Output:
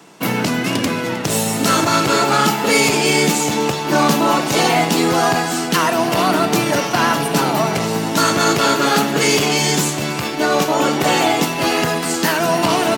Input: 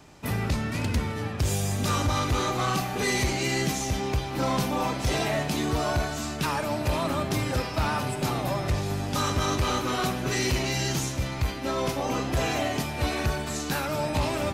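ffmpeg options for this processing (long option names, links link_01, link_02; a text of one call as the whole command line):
ffmpeg -i in.wav -filter_complex "[0:a]highpass=frequency=150:width=0.5412,highpass=frequency=150:width=1.3066,asplit=2[link_01][link_02];[link_02]aeval=exprs='sgn(val(0))*max(abs(val(0))-0.00668,0)':channel_layout=same,volume=-3dB[link_03];[link_01][link_03]amix=inputs=2:normalize=0,asetrate=49392,aresample=44100,aecho=1:1:311:0.141,volume=8dB" out.wav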